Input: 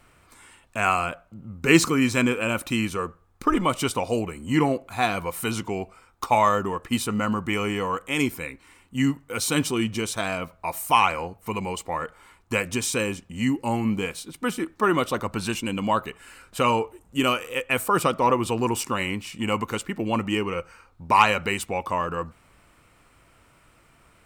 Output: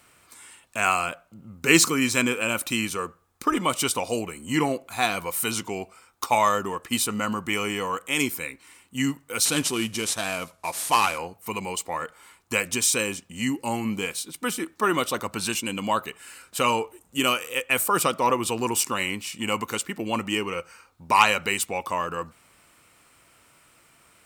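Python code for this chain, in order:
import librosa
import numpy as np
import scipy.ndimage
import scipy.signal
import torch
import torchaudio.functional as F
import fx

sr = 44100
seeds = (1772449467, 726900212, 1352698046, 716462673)

y = fx.cvsd(x, sr, bps=64000, at=(9.45, 11.18))
y = fx.highpass(y, sr, hz=150.0, slope=6)
y = fx.high_shelf(y, sr, hz=3200.0, db=10.0)
y = F.gain(torch.from_numpy(y), -2.0).numpy()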